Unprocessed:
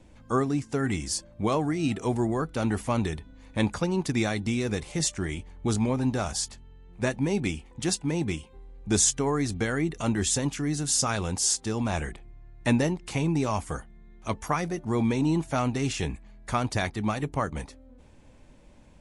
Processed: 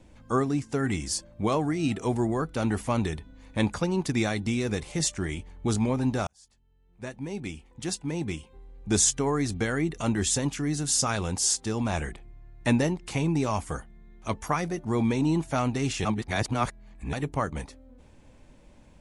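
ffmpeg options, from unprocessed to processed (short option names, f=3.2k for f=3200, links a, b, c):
-filter_complex "[0:a]asplit=4[a][b][c][d];[a]atrim=end=6.27,asetpts=PTS-STARTPTS,afade=t=out:st=6.266:d=0.004:c=hsin[e];[b]atrim=start=6.27:end=16.052,asetpts=PTS-STARTPTS,afade=t=in:d=2.72[f];[c]atrim=start=16.048:end=17.132,asetpts=PTS-STARTPTS,areverse[g];[d]atrim=start=17.128[h];[e][f]concat=n=2:v=0:a=1[i];[i][g]acrossfade=d=0.004:c1=hsin:c2=hsin[j];[j][h]acrossfade=d=0.004:c1=hsin:c2=hsin"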